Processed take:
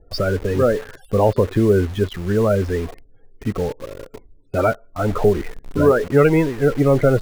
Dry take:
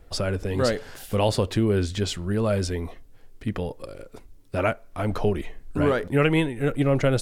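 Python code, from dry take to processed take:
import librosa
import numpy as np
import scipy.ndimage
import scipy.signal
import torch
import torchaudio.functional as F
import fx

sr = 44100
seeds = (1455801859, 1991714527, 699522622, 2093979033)

p1 = fx.spec_topn(x, sr, count=32)
p2 = fx.peak_eq(p1, sr, hz=430.0, db=4.5, octaves=0.35)
p3 = fx.env_lowpass_down(p2, sr, base_hz=1400.0, full_db=-20.0)
p4 = fx.quant_dither(p3, sr, seeds[0], bits=6, dither='none')
p5 = p3 + (p4 * 10.0 ** (-3.0 / 20.0))
y = fx.dynamic_eq(p5, sr, hz=1700.0, q=0.74, threshold_db=-36.0, ratio=4.0, max_db=6)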